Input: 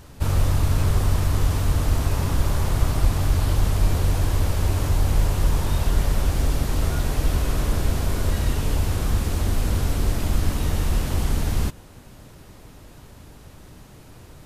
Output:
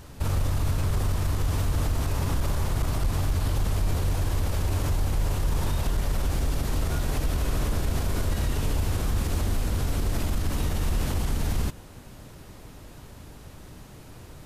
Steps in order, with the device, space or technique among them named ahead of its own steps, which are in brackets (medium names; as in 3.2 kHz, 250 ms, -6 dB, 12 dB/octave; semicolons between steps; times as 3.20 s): clipper into limiter (hard clipper -10 dBFS, distortion -30 dB; peak limiter -17.5 dBFS, peak gain reduction 7.5 dB)